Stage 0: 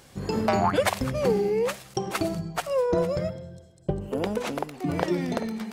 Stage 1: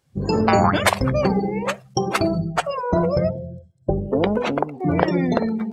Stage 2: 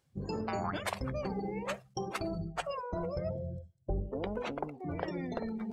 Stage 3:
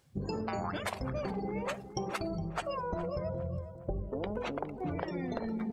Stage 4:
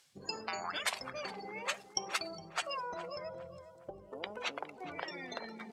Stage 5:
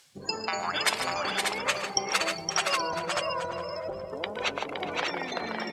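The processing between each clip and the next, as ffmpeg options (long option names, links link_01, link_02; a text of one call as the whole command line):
ffmpeg -i in.wav -af "afftfilt=real='re*lt(hypot(re,im),0.562)':imag='im*lt(hypot(re,im),0.562)':win_size=1024:overlap=0.75,afftdn=noise_reduction=27:noise_floor=-38,volume=8.5dB" out.wav
ffmpeg -i in.wav -af "areverse,acompressor=threshold=-30dB:ratio=4,areverse,asubboost=boost=4.5:cutoff=70,volume=-4.5dB" out.wav
ffmpeg -i in.wav -filter_complex "[0:a]acompressor=threshold=-40dB:ratio=6,asplit=2[link_01][link_02];[link_02]adelay=412,lowpass=frequency=1900:poles=1,volume=-12dB,asplit=2[link_03][link_04];[link_04]adelay=412,lowpass=frequency=1900:poles=1,volume=0.42,asplit=2[link_05][link_06];[link_06]adelay=412,lowpass=frequency=1900:poles=1,volume=0.42,asplit=2[link_07][link_08];[link_08]adelay=412,lowpass=frequency=1900:poles=1,volume=0.42[link_09];[link_01][link_03][link_05][link_07][link_09]amix=inputs=5:normalize=0,volume=7.5dB" out.wav
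ffmpeg -i in.wav -af "bandpass=frequency=5200:width_type=q:width=0.6:csg=0,volume=8.5dB" out.wav
ffmpeg -i in.wav -af "aecho=1:1:116|148|517|591|824:0.133|0.316|0.562|0.596|0.188,volume=8dB" out.wav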